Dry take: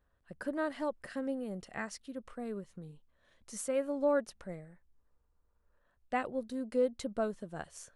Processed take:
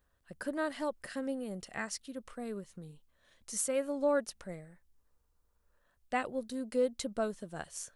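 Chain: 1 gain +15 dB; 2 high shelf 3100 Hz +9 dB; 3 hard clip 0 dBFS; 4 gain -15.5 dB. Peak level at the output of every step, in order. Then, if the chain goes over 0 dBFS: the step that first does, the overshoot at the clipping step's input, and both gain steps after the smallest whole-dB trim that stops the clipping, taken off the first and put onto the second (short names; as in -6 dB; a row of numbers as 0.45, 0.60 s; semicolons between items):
-4.5, -4.0, -4.0, -19.5 dBFS; no overload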